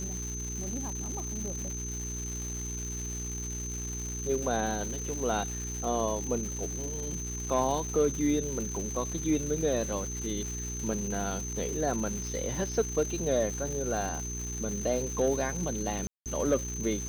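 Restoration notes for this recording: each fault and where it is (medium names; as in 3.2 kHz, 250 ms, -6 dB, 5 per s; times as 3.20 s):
crackle 470 per s -36 dBFS
hum 60 Hz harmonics 7 -38 dBFS
whine 6.2 kHz -37 dBFS
16.07–16.26 s: dropout 188 ms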